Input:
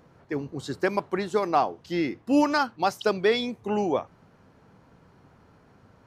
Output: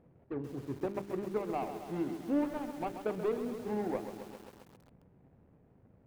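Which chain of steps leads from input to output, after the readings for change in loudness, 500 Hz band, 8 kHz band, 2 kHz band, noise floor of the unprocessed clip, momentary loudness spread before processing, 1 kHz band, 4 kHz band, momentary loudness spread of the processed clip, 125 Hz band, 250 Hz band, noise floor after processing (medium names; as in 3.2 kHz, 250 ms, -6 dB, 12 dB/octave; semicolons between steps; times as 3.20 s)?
-10.5 dB, -9.5 dB, -13.0 dB, -18.5 dB, -58 dBFS, 9 LU, -14.0 dB, -22.0 dB, 11 LU, -6.5 dB, -8.5 dB, -64 dBFS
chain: median filter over 41 samples; treble shelf 3.1 kHz -9.5 dB; hum notches 50/100/150/200/250/300/350/400/450 Hz; in parallel at -2.5 dB: compression 6:1, threshold -34 dBFS, peak gain reduction 15 dB; on the sum: distance through air 340 m; resampled via 11.025 kHz; bit-crushed delay 133 ms, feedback 80%, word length 7-bit, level -9 dB; trim -8.5 dB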